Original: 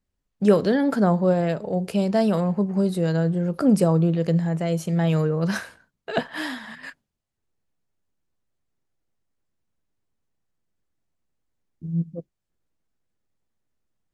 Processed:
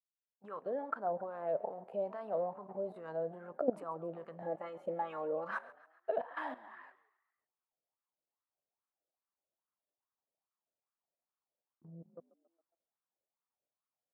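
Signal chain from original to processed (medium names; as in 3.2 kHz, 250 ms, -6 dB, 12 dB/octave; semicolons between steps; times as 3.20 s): fade-in on the opening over 1.70 s; peaking EQ 5.4 kHz -12.5 dB 0.79 oct; 4.42–5.51 s: comb 3.6 ms, depth 79%; dynamic bell 180 Hz, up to -4 dB, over -30 dBFS, Q 1.9; level held to a coarse grid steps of 16 dB; wah-wah 2.4 Hz 570–1200 Hz, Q 4.3; on a send: frequency-shifting echo 137 ms, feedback 53%, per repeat +42 Hz, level -20 dB; on the sum: trim +5 dB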